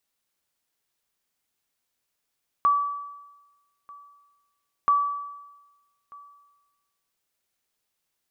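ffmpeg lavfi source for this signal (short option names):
-f lavfi -i "aevalsrc='0.188*(sin(2*PI*1150*mod(t,2.23))*exp(-6.91*mod(t,2.23)/1.14)+0.0562*sin(2*PI*1150*max(mod(t,2.23)-1.24,0))*exp(-6.91*max(mod(t,2.23)-1.24,0)/1.14))':d=4.46:s=44100"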